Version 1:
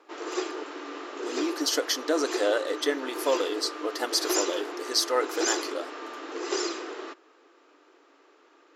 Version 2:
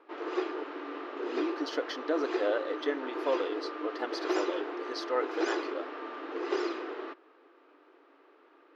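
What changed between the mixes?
speech -3.5 dB; master: add air absorption 310 m

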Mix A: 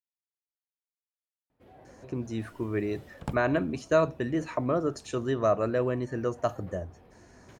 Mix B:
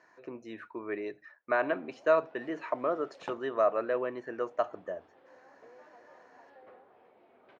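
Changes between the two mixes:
speech: entry -1.85 s; master: add BPF 480–2600 Hz

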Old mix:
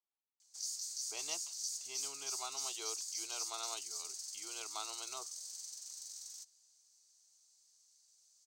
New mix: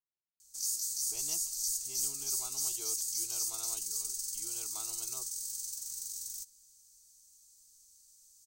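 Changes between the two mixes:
speech -7.5 dB; master: remove three-band isolator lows -23 dB, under 440 Hz, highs -20 dB, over 6300 Hz

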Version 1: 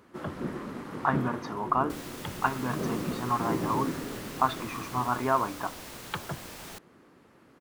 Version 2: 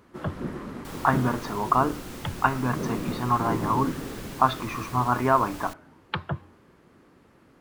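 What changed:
speech +4.5 dB; second sound: entry -1.05 s; master: add low shelf 82 Hz +11.5 dB

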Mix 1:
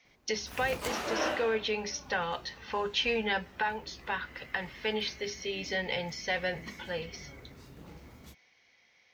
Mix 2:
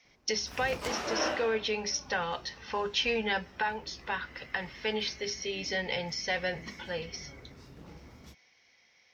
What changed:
background: add high shelf 7800 Hz -9.5 dB; master: add bell 5400 Hz +7.5 dB 0.25 oct

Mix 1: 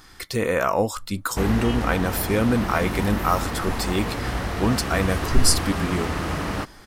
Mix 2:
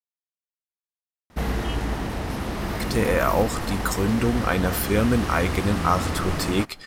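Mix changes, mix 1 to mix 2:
speech: entry +2.60 s; background: add bell 1300 Hz -2.5 dB 2 oct

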